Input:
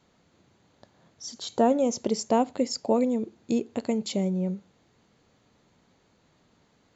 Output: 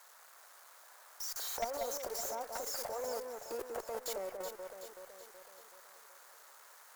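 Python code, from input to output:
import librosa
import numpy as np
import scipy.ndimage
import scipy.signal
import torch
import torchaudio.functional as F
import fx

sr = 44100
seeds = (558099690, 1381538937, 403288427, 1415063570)

y = x + 0.5 * 10.0 ** (-19.5 / 20.0) * np.diff(np.sign(x), prepend=np.sign(x[:1]))
y = scipy.signal.sosfilt(scipy.signal.butter(4, 520.0, 'highpass', fs=sr, output='sos'), y)
y = fx.high_shelf_res(y, sr, hz=2000.0, db=-12.5, q=1.5)
y = fx.level_steps(y, sr, step_db=20)
y = fx.tube_stage(y, sr, drive_db=31.0, bias=0.3)
y = fx.echo_alternate(y, sr, ms=188, hz=2200.0, feedback_pct=72, wet_db=-4.5)
y = y * librosa.db_to_amplitude(1.5)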